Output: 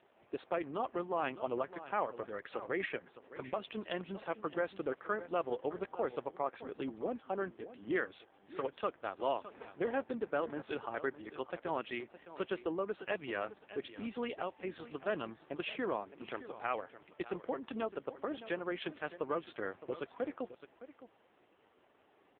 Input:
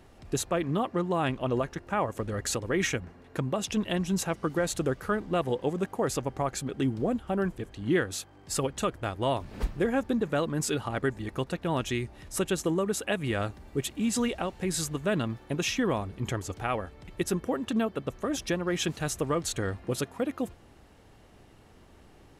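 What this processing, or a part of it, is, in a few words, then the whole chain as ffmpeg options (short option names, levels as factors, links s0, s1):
satellite phone: -af "highpass=380,lowpass=3300,aecho=1:1:613:0.188,volume=0.596" -ar 8000 -c:a libopencore_amrnb -b:a 5900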